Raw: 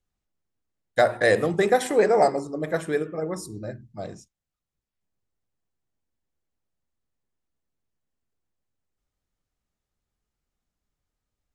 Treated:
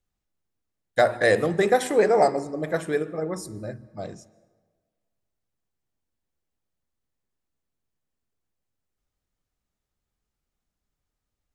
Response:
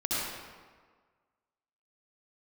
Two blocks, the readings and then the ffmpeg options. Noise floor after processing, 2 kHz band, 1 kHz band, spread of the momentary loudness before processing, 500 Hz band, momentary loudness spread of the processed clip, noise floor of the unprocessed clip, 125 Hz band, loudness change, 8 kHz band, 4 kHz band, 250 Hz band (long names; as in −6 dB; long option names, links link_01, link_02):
−84 dBFS, 0.0 dB, 0.0 dB, 18 LU, 0.0 dB, 18 LU, below −85 dBFS, 0.0 dB, 0.0 dB, 0.0 dB, 0.0 dB, 0.0 dB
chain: -filter_complex "[0:a]asplit=2[link_01][link_02];[1:a]atrim=start_sample=2205,adelay=70[link_03];[link_02][link_03]afir=irnorm=-1:irlink=0,volume=-30dB[link_04];[link_01][link_04]amix=inputs=2:normalize=0"